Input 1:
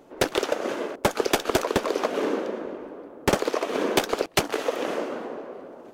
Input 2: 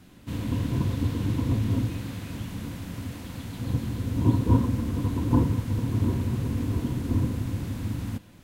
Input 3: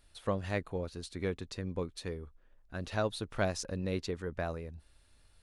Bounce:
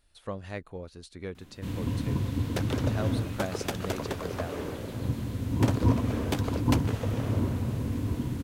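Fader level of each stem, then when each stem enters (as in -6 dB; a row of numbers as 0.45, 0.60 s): -11.0, -3.0, -3.5 dB; 2.35, 1.35, 0.00 s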